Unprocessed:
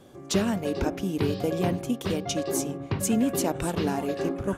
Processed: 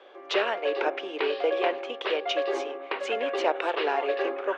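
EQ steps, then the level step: steep high-pass 410 Hz 36 dB/octave; low-pass 2.9 kHz 24 dB/octave; treble shelf 2.2 kHz +9.5 dB; +4.0 dB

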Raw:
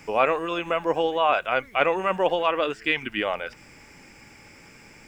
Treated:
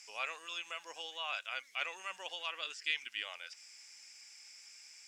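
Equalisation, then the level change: band-pass filter 5.8 kHz, Q 1.7; differentiator; tilt EQ -4 dB/octave; +15.5 dB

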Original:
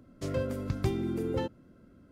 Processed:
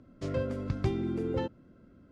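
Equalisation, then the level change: distance through air 85 m; 0.0 dB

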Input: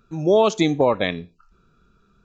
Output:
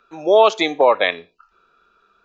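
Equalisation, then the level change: three-band isolator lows -24 dB, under 450 Hz, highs -16 dB, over 4.5 kHz; peaking EQ 130 Hz -6.5 dB 0.58 oct; +7.5 dB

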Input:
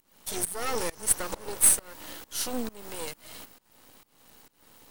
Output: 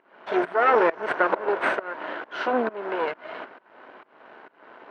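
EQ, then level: cabinet simulation 300–2500 Hz, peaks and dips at 380 Hz +8 dB, 650 Hz +10 dB, 1 kHz +6 dB, 1.5 kHz +10 dB; +8.5 dB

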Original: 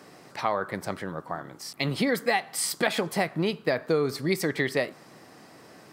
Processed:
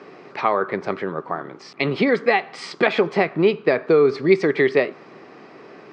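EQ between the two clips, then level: distance through air 210 m; cabinet simulation 160–8300 Hz, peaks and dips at 400 Hz +9 dB, 1.2 kHz +4 dB, 2.4 kHz +6 dB; +6.0 dB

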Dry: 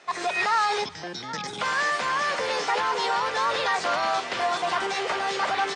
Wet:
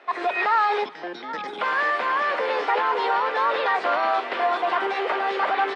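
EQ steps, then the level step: high-pass 270 Hz 24 dB/octave; distance through air 460 m; treble shelf 7.4 kHz +12 dB; +5.0 dB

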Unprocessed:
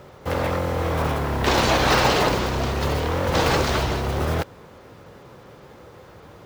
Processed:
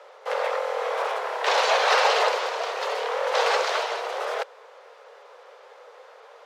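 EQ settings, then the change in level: steep high-pass 440 Hz 72 dB/octave; distance through air 58 m; 0.0 dB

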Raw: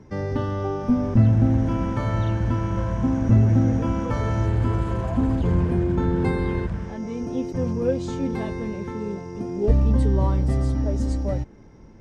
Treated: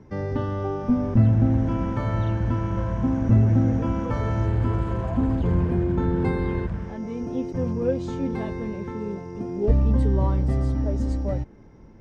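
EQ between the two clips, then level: treble shelf 4.8 kHz -9 dB; -1.0 dB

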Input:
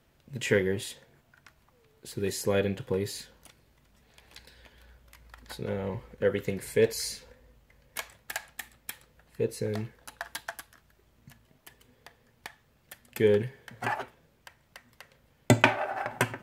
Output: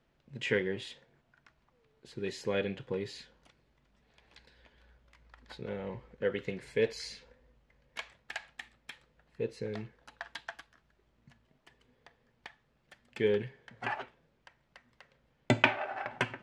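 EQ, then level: peaking EQ 88 Hz -9.5 dB 0.45 oct; dynamic bell 2.9 kHz, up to +6 dB, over -48 dBFS, Q 0.95; distance through air 110 m; -5.5 dB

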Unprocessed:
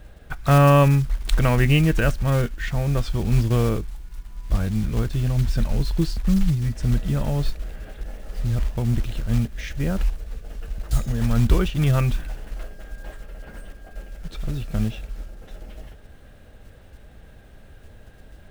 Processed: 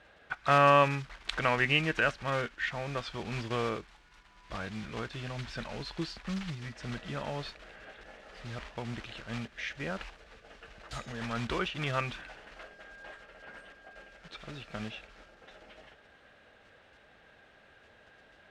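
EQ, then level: band-pass filter 2 kHz, Q 0.56; distance through air 61 m; 0.0 dB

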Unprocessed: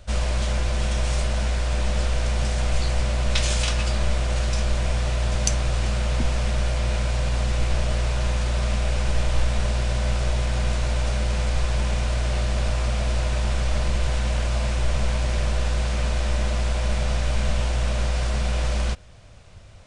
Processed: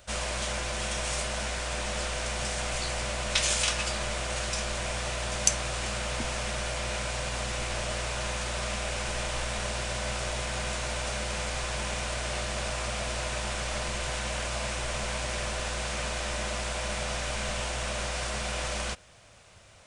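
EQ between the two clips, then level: tilt EQ +3.5 dB/octave; treble shelf 2.3 kHz -7.5 dB; peaking EQ 4.3 kHz -2.5 dB; 0.0 dB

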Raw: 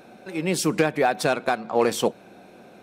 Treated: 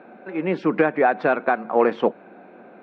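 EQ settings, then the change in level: Chebyshev band-pass 220–1800 Hz, order 2; distance through air 200 m; bass shelf 360 Hz -4 dB; +5.5 dB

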